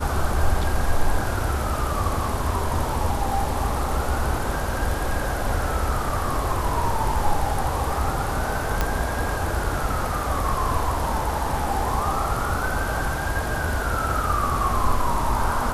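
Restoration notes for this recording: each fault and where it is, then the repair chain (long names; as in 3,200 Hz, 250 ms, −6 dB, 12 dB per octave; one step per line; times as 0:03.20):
0:08.81: click −7 dBFS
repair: click removal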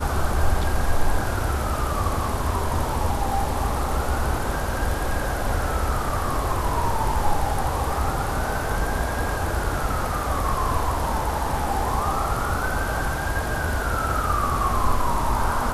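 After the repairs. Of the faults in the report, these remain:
none of them is left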